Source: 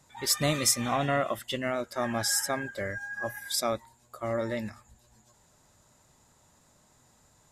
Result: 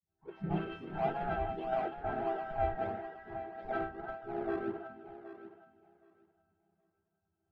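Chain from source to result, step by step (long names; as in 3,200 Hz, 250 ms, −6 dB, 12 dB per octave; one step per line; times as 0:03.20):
delay that plays each chunk backwards 239 ms, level −7 dB
high-shelf EQ 3,600 Hz −4.5 dB
resonances in every octave E, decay 0.32 s
mid-hump overdrive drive 22 dB, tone 1,600 Hz, clips at −31 dBFS
all-pass dispersion highs, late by 92 ms, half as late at 350 Hz
pitch-shifted copies added +3 semitones −1 dB
in parallel at −10 dB: sample-and-hold swept by an LFO 40×, swing 100% 1.6 Hz
on the sum: high-frequency loss of the air 460 metres
feedback echo with a high-pass in the loop 771 ms, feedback 35%, high-pass 190 Hz, level −7 dB
multiband upward and downward expander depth 70%
level +3 dB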